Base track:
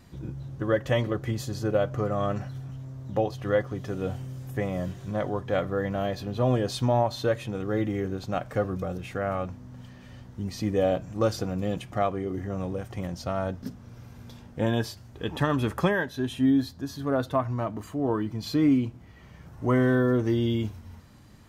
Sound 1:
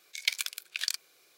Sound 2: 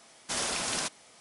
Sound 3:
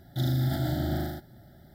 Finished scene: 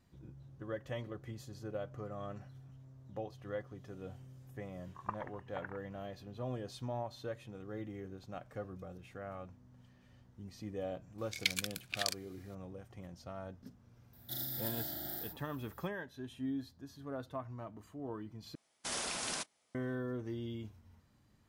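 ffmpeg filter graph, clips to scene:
ffmpeg -i bed.wav -i cue0.wav -i cue1.wav -i cue2.wav -filter_complex "[1:a]asplit=2[link_01][link_02];[0:a]volume=-16.5dB[link_03];[link_01]lowpass=frequency=2800:width_type=q:width=0.5098,lowpass=frequency=2800:width_type=q:width=0.6013,lowpass=frequency=2800:width_type=q:width=0.9,lowpass=frequency=2800:width_type=q:width=2.563,afreqshift=-3300[link_04];[link_02]equalizer=frequency=1500:width=1.5:gain=3[link_05];[3:a]aemphasis=mode=production:type=riaa[link_06];[2:a]agate=range=-13dB:threshold=-43dB:ratio=16:release=100:detection=peak[link_07];[link_03]asplit=2[link_08][link_09];[link_08]atrim=end=18.554[link_10];[link_07]atrim=end=1.2,asetpts=PTS-STARTPTS,volume=-7dB[link_11];[link_09]atrim=start=19.746[link_12];[link_04]atrim=end=1.37,asetpts=PTS-STARTPTS,volume=-7.5dB,afade=type=in:duration=0.004:curve=hsin,afade=type=out:start_time=1.366:duration=0.004:curve=hsin,adelay=212121S[link_13];[link_05]atrim=end=1.37,asetpts=PTS-STARTPTS,volume=-5dB,afade=type=in:duration=0.004:curve=hsin,afade=type=out:start_time=1.366:duration=0.004:curve=hsin,adelay=11180[link_14];[link_06]atrim=end=1.74,asetpts=PTS-STARTPTS,volume=-13dB,afade=type=in:duration=0.004:curve=hsin,afade=type=out:start_time=1.736:duration=0.004:curve=hsin,adelay=14130[link_15];[link_10][link_11]acrossfade=duration=0.004:curve1=hsin:curve2=hsin[link_16];[link_16][link_12]acrossfade=duration=0.004:curve1=hsin:curve2=hsin[link_17];[link_17][link_13][link_14][link_15]amix=inputs=4:normalize=0" out.wav

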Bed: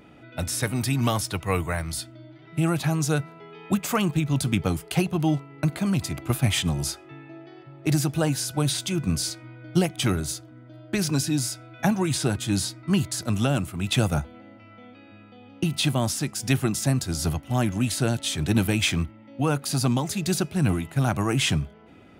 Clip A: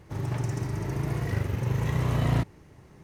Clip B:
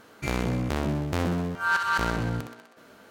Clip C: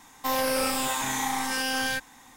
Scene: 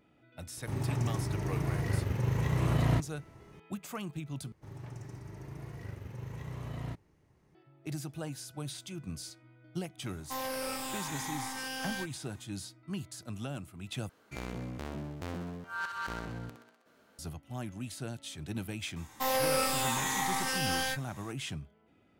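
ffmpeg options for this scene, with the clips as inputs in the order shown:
ffmpeg -i bed.wav -i cue0.wav -i cue1.wav -i cue2.wav -filter_complex "[1:a]asplit=2[link_01][link_02];[3:a]asplit=2[link_03][link_04];[0:a]volume=-16dB[link_05];[link_04]asplit=2[link_06][link_07];[link_07]adelay=13,volume=-6dB[link_08];[link_06][link_08]amix=inputs=2:normalize=0[link_09];[link_05]asplit=3[link_10][link_11][link_12];[link_10]atrim=end=4.524[link_13];[link_02]atrim=end=3.03,asetpts=PTS-STARTPTS,volume=-15dB[link_14];[link_11]atrim=start=7.546:end=14.094[link_15];[2:a]atrim=end=3.1,asetpts=PTS-STARTPTS,volume=-12.5dB[link_16];[link_12]atrim=start=17.186[link_17];[link_01]atrim=end=3.03,asetpts=PTS-STARTPTS,volume=-3dB,afade=type=in:duration=0.004:curve=hsin,afade=type=out:start_time=3.026:duration=0.004:curve=hsin,adelay=570[link_18];[link_03]atrim=end=2.36,asetpts=PTS-STARTPTS,volume=-10.5dB,afade=type=in:duration=0.004:curve=hsin,afade=type=out:start_time=2.356:duration=0.004:curve=hsin,adelay=10060[link_19];[link_09]atrim=end=2.36,asetpts=PTS-STARTPTS,volume=-4dB,afade=type=in:duration=0.004:curve=hsin,afade=type=out:start_time=2.356:duration=0.004:curve=hsin,adelay=18960[link_20];[link_13][link_14]acrossfade=duration=0.004:curve1=hsin:curve2=hsin[link_21];[link_21][link_15]acrossfade=duration=0.004:curve1=hsin:curve2=hsin[link_22];[link_22][link_16]acrossfade=duration=0.004:curve1=hsin:curve2=hsin[link_23];[link_23][link_17]acrossfade=duration=0.004:curve1=hsin:curve2=hsin[link_24];[link_24][link_18][link_19][link_20]amix=inputs=4:normalize=0" out.wav

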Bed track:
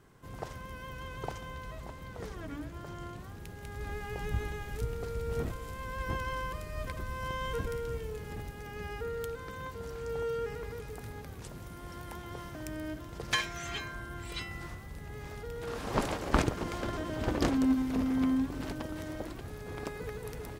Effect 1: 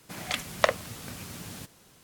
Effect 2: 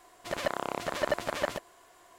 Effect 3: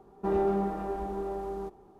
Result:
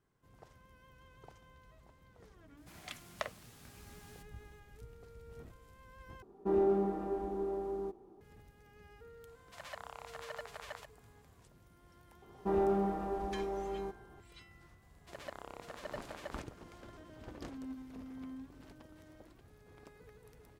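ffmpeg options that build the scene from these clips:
ffmpeg -i bed.wav -i cue0.wav -i cue1.wav -i cue2.wav -filter_complex "[3:a]asplit=2[link_01][link_02];[2:a]asplit=2[link_03][link_04];[0:a]volume=-18dB[link_05];[1:a]bandreject=frequency=520:width=9.3[link_06];[link_01]equalizer=frequency=320:width_type=o:width=1:gain=9[link_07];[link_03]highpass=frequency=680:width=0.5412,highpass=frequency=680:width=1.3066[link_08];[link_05]asplit=2[link_09][link_10];[link_09]atrim=end=6.224[link_11];[link_07]atrim=end=1.99,asetpts=PTS-STARTPTS,volume=-8dB[link_12];[link_10]atrim=start=8.206[link_13];[link_06]atrim=end=2.03,asetpts=PTS-STARTPTS,volume=-16dB,afade=type=in:duration=0.004:curve=hsin,afade=type=out:start_time=2.026:duration=0.004:curve=hsin,adelay=2570[link_14];[link_08]atrim=end=2.18,asetpts=PTS-STARTPTS,volume=-13dB,afade=type=in:duration=0.004:curve=hsin,afade=type=out:start_time=2.176:duration=0.004:curve=hsin,adelay=9270[link_15];[link_02]atrim=end=1.99,asetpts=PTS-STARTPTS,volume=-3.5dB,afade=type=in:duration=0.004:curve=hsin,afade=type=out:start_time=1.986:duration=0.004:curve=hsin,adelay=12220[link_16];[link_04]atrim=end=2.18,asetpts=PTS-STARTPTS,volume=-15.5dB,afade=type=in:duration=0.004:curve=hsin,afade=type=out:start_time=2.176:duration=0.004:curve=hsin,adelay=14820[link_17];[link_11][link_12]acrossfade=duration=0.004:curve1=hsin:curve2=hsin[link_18];[link_18][link_13]acrossfade=duration=0.004:curve1=hsin:curve2=hsin[link_19];[link_19][link_14][link_15][link_16][link_17]amix=inputs=5:normalize=0" out.wav

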